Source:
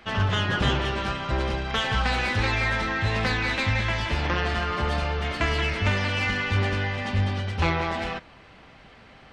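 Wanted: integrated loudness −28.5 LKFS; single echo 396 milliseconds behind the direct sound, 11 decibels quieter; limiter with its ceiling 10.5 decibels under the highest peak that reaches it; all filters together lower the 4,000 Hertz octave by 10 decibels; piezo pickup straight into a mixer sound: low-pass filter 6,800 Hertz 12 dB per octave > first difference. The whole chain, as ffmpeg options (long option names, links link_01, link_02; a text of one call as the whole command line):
ffmpeg -i in.wav -af "equalizer=frequency=4000:width_type=o:gain=-4.5,alimiter=limit=-21.5dB:level=0:latency=1,lowpass=6800,aderivative,aecho=1:1:396:0.282,volume=15dB" out.wav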